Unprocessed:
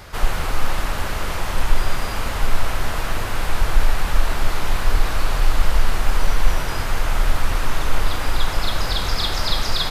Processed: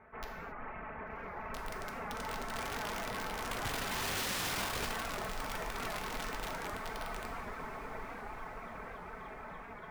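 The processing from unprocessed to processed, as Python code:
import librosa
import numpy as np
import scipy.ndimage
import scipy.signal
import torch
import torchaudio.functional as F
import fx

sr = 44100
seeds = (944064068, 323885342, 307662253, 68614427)

p1 = fx.rattle_buzz(x, sr, strikes_db=-25.0, level_db=-20.0)
p2 = fx.doppler_pass(p1, sr, speed_mps=10, closest_m=2.5, pass_at_s=4.37)
p3 = fx.highpass(p2, sr, hz=210.0, slope=6)
p4 = fx.dereverb_blind(p3, sr, rt60_s=1.1)
p5 = scipy.signal.sosfilt(scipy.signal.ellip(4, 1.0, 70, 2200.0, 'lowpass', fs=sr, output='sos'), p4)
p6 = fx.tilt_shelf(p5, sr, db=3.0, hz=1500.0)
p7 = p6 + 0.54 * np.pad(p6, (int(4.6 * sr / 1000.0), 0))[:len(p6)]
p8 = fx.over_compress(p7, sr, threshold_db=-47.0, ratio=-1.0)
p9 = p7 + (p8 * 10.0 ** (2.0 / 20.0))
p10 = (np.mod(10.0 ** (29.0 / 20.0) * p9 + 1.0, 2.0) - 1.0) / 10.0 ** (29.0 / 20.0)
p11 = p10 + fx.echo_diffused(p10, sr, ms=1142, feedback_pct=46, wet_db=-16.0, dry=0)
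p12 = fx.rev_gated(p11, sr, seeds[0], gate_ms=300, shape='falling', drr_db=3.5)
p13 = fx.record_warp(p12, sr, rpm=78.0, depth_cents=100.0)
y = p13 * 10.0 ** (-3.5 / 20.0)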